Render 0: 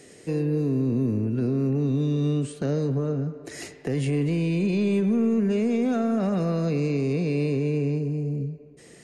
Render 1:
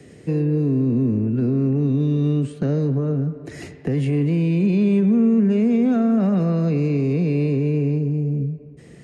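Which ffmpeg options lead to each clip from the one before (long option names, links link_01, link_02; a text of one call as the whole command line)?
ffmpeg -i in.wav -filter_complex "[0:a]highpass=42,bass=frequency=250:gain=12,treble=frequency=4000:gain=-8,acrossover=split=200|800|3100[link_01][link_02][link_03][link_04];[link_01]acompressor=threshold=-27dB:ratio=6[link_05];[link_05][link_02][link_03][link_04]amix=inputs=4:normalize=0,volume=1dB" out.wav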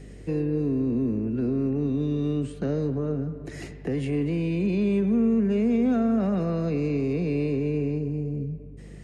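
ffmpeg -i in.wav -filter_complex "[0:a]acrossover=split=210|1500[link_01][link_02][link_03];[link_01]alimiter=level_in=4dB:limit=-24dB:level=0:latency=1,volume=-4dB[link_04];[link_04][link_02][link_03]amix=inputs=3:normalize=0,aeval=exprs='val(0)+0.01*(sin(2*PI*50*n/s)+sin(2*PI*2*50*n/s)/2+sin(2*PI*3*50*n/s)/3+sin(2*PI*4*50*n/s)/4+sin(2*PI*5*50*n/s)/5)':channel_layout=same,volume=-3dB" out.wav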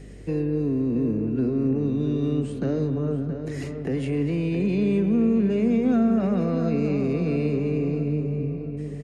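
ffmpeg -i in.wav -filter_complex "[0:a]asplit=2[link_01][link_02];[link_02]adelay=672,lowpass=frequency=2300:poles=1,volume=-8dB,asplit=2[link_03][link_04];[link_04]adelay=672,lowpass=frequency=2300:poles=1,volume=0.44,asplit=2[link_05][link_06];[link_06]adelay=672,lowpass=frequency=2300:poles=1,volume=0.44,asplit=2[link_07][link_08];[link_08]adelay=672,lowpass=frequency=2300:poles=1,volume=0.44,asplit=2[link_09][link_10];[link_10]adelay=672,lowpass=frequency=2300:poles=1,volume=0.44[link_11];[link_01][link_03][link_05][link_07][link_09][link_11]amix=inputs=6:normalize=0,volume=1dB" out.wav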